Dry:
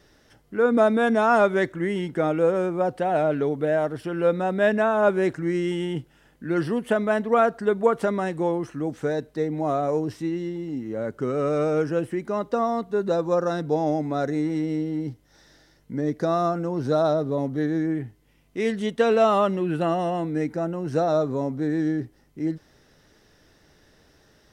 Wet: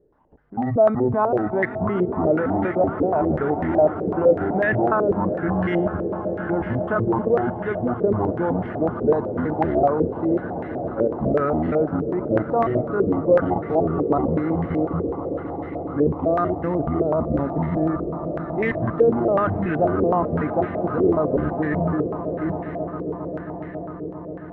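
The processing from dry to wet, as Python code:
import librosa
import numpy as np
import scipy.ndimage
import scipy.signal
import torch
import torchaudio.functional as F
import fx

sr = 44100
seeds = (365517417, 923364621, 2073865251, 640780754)

y = fx.pitch_trill(x, sr, semitones=-11.0, every_ms=189)
y = fx.level_steps(y, sr, step_db=14)
y = fx.echo_swell(y, sr, ms=135, loudest=8, wet_db=-17.0)
y = fx.filter_held_lowpass(y, sr, hz=8.0, low_hz=450.0, high_hz=1900.0)
y = F.gain(torch.from_numpy(y), 4.5).numpy()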